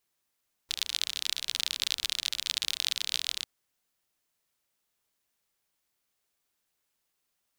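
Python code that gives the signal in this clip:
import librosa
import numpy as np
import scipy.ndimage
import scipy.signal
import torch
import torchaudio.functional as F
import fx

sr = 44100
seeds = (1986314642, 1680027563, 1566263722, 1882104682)

y = fx.rain(sr, seeds[0], length_s=2.75, drops_per_s=44.0, hz=3700.0, bed_db=-29)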